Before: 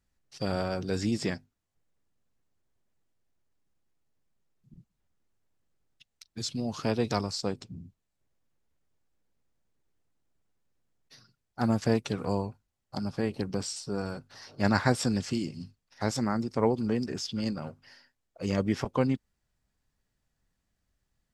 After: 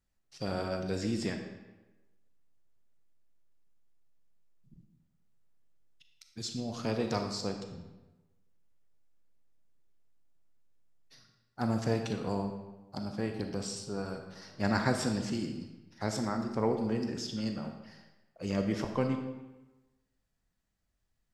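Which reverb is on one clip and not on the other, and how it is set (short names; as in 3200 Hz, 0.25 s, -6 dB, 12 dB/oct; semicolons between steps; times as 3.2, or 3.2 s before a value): digital reverb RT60 1.1 s, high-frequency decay 0.8×, pre-delay 0 ms, DRR 4.5 dB; gain -4.5 dB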